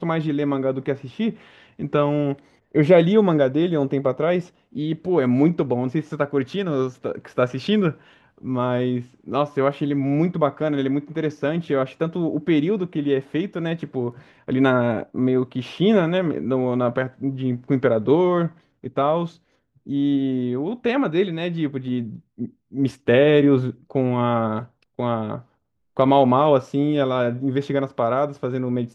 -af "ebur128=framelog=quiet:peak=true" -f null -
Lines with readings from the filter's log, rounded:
Integrated loudness:
  I:         -21.7 LUFS
  Threshold: -32.0 LUFS
Loudness range:
  LRA:         3.9 LU
  Threshold: -41.9 LUFS
  LRA low:   -23.9 LUFS
  LRA high:  -20.0 LUFS
True peak:
  Peak:       -3.6 dBFS